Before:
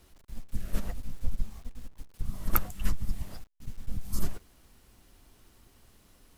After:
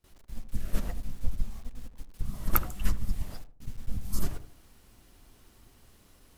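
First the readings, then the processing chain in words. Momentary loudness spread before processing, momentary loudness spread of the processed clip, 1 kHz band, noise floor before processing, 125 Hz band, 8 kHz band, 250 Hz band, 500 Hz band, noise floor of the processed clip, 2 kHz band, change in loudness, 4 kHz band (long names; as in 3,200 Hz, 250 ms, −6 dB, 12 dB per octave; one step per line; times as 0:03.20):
19 LU, 19 LU, +1.0 dB, −61 dBFS, +1.5 dB, +1.0 dB, +1.0 dB, +1.0 dB, −60 dBFS, +1.0 dB, +1.0 dB, +1.0 dB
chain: noise gate with hold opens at −49 dBFS
feedback echo with a low-pass in the loop 78 ms, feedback 39%, low-pass 860 Hz, level −10 dB
level +1 dB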